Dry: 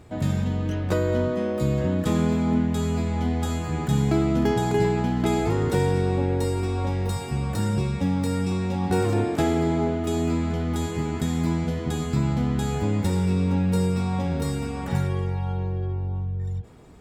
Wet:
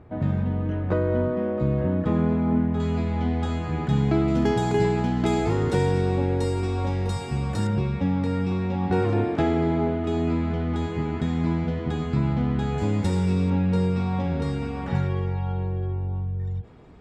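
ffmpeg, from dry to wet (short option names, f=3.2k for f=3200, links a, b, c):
-af "asetnsamples=n=441:p=0,asendcmd='2.8 lowpass f 3600;4.28 lowpass f 7400;7.67 lowpass f 3100;12.78 lowpass f 7500;13.5 lowpass f 3700',lowpass=1.7k"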